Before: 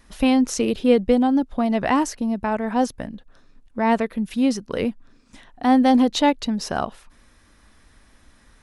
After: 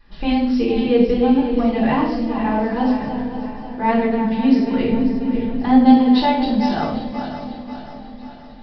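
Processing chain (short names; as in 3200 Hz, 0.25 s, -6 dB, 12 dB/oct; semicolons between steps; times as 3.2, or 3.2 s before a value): regenerating reverse delay 0.269 s, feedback 68%, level -9 dB; 4.89–5.85 low shelf 360 Hz +9.5 dB; in parallel at -3 dB: limiter -12 dBFS, peak gain reduction 10 dB; on the sum: reverb RT60 0.70 s, pre-delay 3 ms, DRR -6 dB; downsampling 11025 Hz; on a send: swung echo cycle 0.779 s, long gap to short 1.5:1, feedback 57%, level -22 dB; on the sum: gain -11.5 dB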